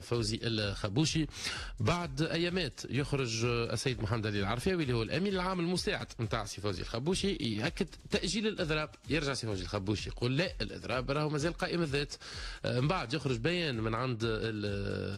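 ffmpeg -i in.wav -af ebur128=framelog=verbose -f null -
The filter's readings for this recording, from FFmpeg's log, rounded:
Integrated loudness:
  I:         -33.5 LUFS
  Threshold: -43.5 LUFS
Loudness range:
  LRA:         1.3 LU
  Threshold: -53.6 LUFS
  LRA low:   -34.1 LUFS
  LRA high:  -32.8 LUFS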